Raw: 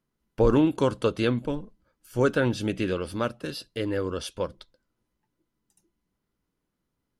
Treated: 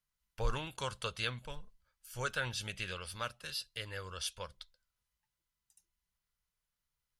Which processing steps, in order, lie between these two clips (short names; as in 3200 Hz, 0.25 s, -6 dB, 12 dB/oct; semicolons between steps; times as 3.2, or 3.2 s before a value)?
passive tone stack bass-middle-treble 10-0-10